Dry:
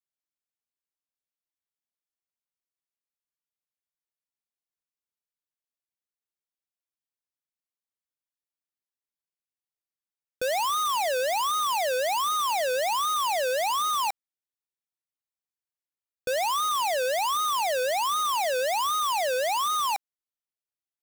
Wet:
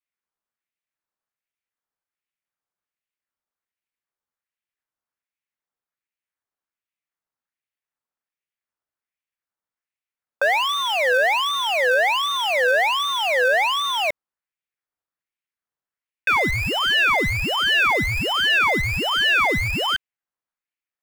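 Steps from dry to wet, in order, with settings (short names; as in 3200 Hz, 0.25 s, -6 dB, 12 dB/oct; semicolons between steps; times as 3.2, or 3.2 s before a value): tilt shelf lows +9 dB, about 1200 Hz; ring modulator with a swept carrier 1700 Hz, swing 40%, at 1.3 Hz; gain +6.5 dB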